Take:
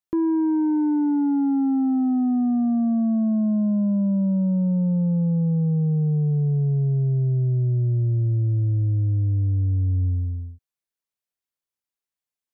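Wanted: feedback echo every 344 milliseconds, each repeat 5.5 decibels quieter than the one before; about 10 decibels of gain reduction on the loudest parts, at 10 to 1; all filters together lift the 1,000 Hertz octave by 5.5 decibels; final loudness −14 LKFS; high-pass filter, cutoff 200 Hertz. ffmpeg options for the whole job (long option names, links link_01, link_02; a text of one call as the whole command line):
ffmpeg -i in.wav -af "highpass=200,equalizer=frequency=1000:width_type=o:gain=7,acompressor=threshold=-29dB:ratio=10,aecho=1:1:344|688|1032|1376|1720|2064|2408:0.531|0.281|0.149|0.079|0.0419|0.0222|0.0118,volume=17.5dB" out.wav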